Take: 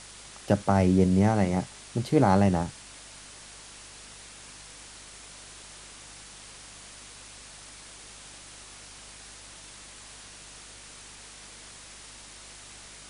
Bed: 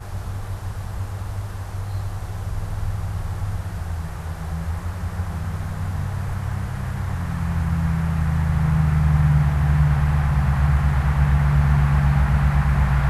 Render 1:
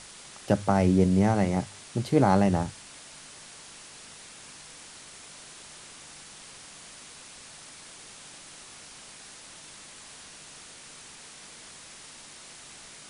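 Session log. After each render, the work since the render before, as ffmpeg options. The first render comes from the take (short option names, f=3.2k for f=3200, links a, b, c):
-af "bandreject=f=50:t=h:w=4,bandreject=f=100:t=h:w=4"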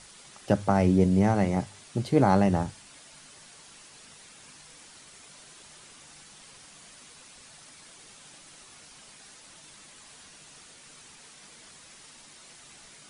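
-af "afftdn=nr=6:nf=-48"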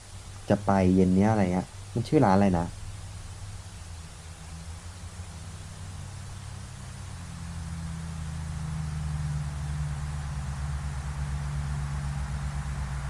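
-filter_complex "[1:a]volume=-14.5dB[a];[0:a][a]amix=inputs=2:normalize=0"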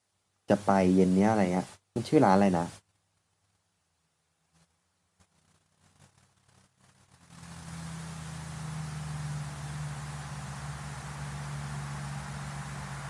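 -af "highpass=170,agate=range=-28dB:threshold=-42dB:ratio=16:detection=peak"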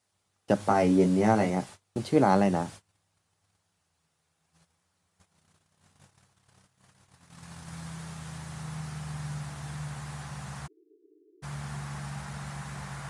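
-filter_complex "[0:a]asettb=1/sr,asplit=3[a][b][c];[a]atrim=end=0.584[d];[b]atrim=start=0.58:end=1.5,asetpts=PTS-STARTPTS,afade=t=in:d=0.004:c=qsin,afade=t=out:st=0.916:d=0.004:c=qsin,asplit=2[e][f];[f]adelay=18,volume=-4dB[g];[e][g]amix=inputs=2:normalize=0,atrim=end_sample=40572[h];[c]atrim=start=1.496[i];[d][h]acrossfade=d=0.004:c1=hsin:c2=qsin[j];[j][i]acrossfade=d=0.004:c1=qsin:c2=hsin,asplit=3[k][l][m];[k]afade=t=out:st=10.66:d=0.02[n];[l]asuperpass=centerf=360:order=20:qfactor=2.4,afade=t=in:st=10.66:d=0.02,afade=t=out:st=11.42:d=0.02[o];[m]afade=t=in:st=11.42:d=0.02[p];[n][o][p]amix=inputs=3:normalize=0"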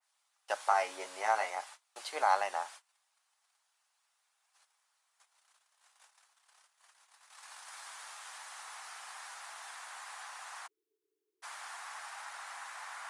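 -af "highpass=f=790:w=0.5412,highpass=f=790:w=1.3066,adynamicequalizer=threshold=0.00355:dfrequency=2800:dqfactor=0.7:tfrequency=2800:tqfactor=0.7:attack=5:release=100:ratio=0.375:range=2:mode=cutabove:tftype=highshelf"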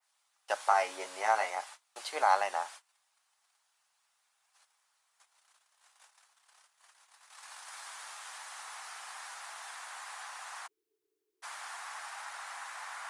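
-af "volume=2dB"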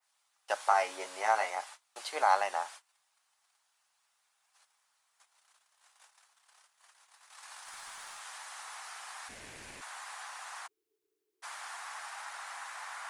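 -filter_complex "[0:a]asettb=1/sr,asplit=3[a][b][c];[a]atrim=end=7.594[d];[b]atrim=start=7.59:end=8.21,asetpts=PTS-STARTPTS,afade=t=in:d=0.004:c=qsin,afade=t=out:st=0.616:d=0.004:c=qsin,aeval=exprs='clip(val(0),-1,0.00708)':c=same[e];[c]atrim=start=8.206[f];[d][e]acrossfade=d=0.004:c1=hsin:c2=qsin[g];[g][f]acrossfade=d=0.004:c1=qsin:c2=hsin,asplit=3[h][i][j];[h]afade=t=out:st=9.28:d=0.02[k];[i]aeval=exprs='val(0)*sin(2*PI*740*n/s)':c=same,afade=t=in:st=9.28:d=0.02,afade=t=out:st=9.8:d=0.02[l];[j]afade=t=in:st=9.8:d=0.02[m];[k][l][m]amix=inputs=3:normalize=0"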